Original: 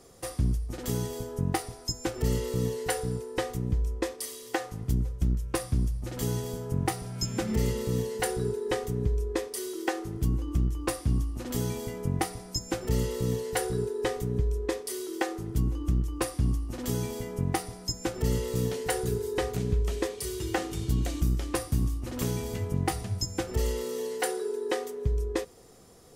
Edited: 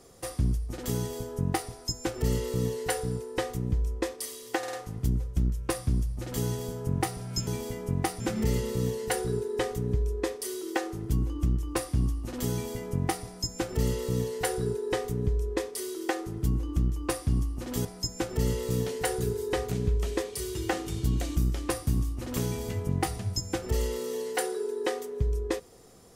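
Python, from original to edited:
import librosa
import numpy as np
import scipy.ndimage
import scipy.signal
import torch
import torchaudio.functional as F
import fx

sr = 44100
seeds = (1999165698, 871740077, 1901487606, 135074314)

y = fx.edit(x, sr, fx.stutter(start_s=4.58, slice_s=0.05, count=4),
    fx.move(start_s=16.97, length_s=0.73, to_s=7.32), tone=tone)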